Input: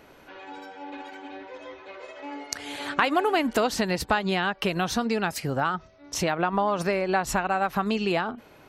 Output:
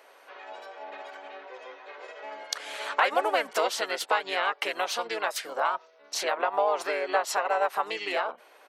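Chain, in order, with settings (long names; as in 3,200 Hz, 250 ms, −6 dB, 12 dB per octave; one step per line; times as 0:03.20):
pitch-shifted copies added −5 semitones −1 dB
high-pass filter 480 Hz 24 dB per octave
level −2.5 dB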